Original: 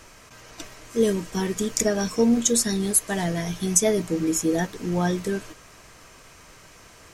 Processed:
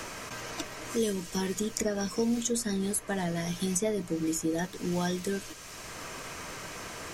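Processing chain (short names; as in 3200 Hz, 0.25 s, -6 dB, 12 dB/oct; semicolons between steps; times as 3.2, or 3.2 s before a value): three-band squash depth 70%; gain -6.5 dB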